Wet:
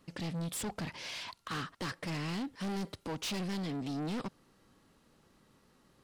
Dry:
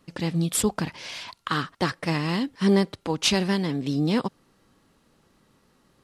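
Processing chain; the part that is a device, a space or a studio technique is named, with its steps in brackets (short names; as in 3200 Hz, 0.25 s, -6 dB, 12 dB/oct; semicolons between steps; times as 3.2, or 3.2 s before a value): 2.6–3.21 high shelf 7400 Hz +6 dB; saturation between pre-emphasis and de-emphasis (high shelf 10000 Hz +6.5 dB; soft clip -30.5 dBFS, distortion -5 dB; high shelf 10000 Hz -6.5 dB); gain -3.5 dB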